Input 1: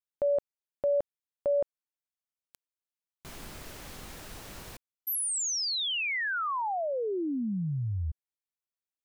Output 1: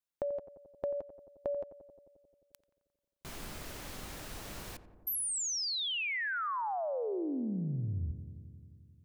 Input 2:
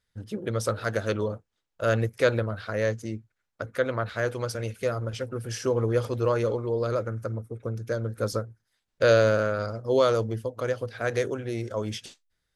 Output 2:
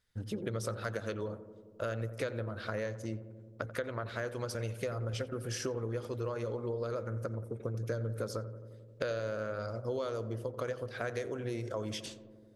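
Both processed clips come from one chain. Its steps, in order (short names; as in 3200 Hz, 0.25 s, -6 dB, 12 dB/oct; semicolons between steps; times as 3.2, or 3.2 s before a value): compressor 10:1, threshold -33 dBFS; on a send: darkening echo 88 ms, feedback 81%, low-pass 1300 Hz, level -12.5 dB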